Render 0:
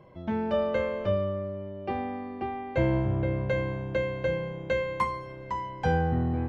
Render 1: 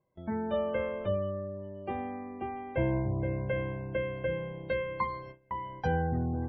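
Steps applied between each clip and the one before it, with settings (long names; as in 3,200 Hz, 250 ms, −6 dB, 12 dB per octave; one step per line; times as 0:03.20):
gate on every frequency bin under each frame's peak −30 dB strong
noise gate with hold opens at −31 dBFS
level −4 dB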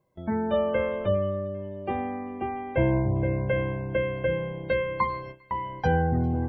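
delay with a high-pass on its return 400 ms, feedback 63%, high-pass 2,400 Hz, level −22 dB
level +6 dB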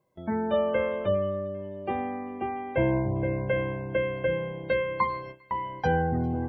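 low-shelf EQ 100 Hz −9 dB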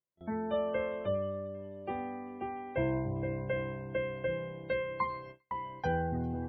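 noise gate with hold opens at −30 dBFS
level −7 dB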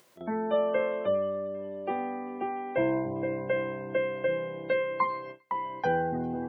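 high-pass filter 230 Hz 12 dB per octave
high-shelf EQ 4,100 Hz −6.5 dB
in parallel at +0.5 dB: upward compression, threshold −36 dBFS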